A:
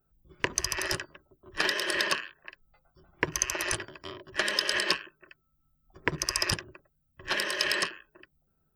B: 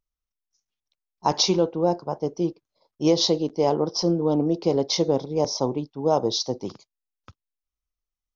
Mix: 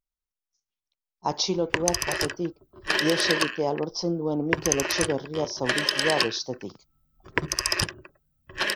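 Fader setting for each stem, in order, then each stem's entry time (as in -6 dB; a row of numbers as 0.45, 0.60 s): +3.0, -5.0 dB; 1.30, 0.00 s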